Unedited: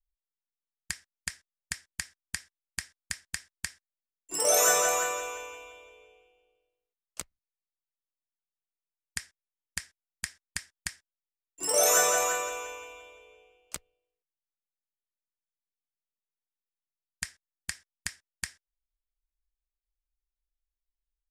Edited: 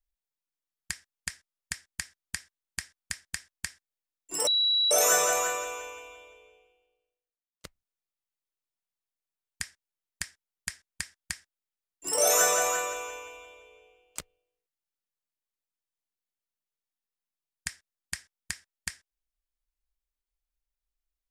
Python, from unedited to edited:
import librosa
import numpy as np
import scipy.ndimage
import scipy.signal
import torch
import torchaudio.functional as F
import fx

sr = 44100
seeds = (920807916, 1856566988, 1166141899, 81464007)

y = fx.edit(x, sr, fx.insert_tone(at_s=4.47, length_s=0.44, hz=3910.0, db=-21.5),
    fx.fade_out_span(start_s=5.87, length_s=1.33), tone=tone)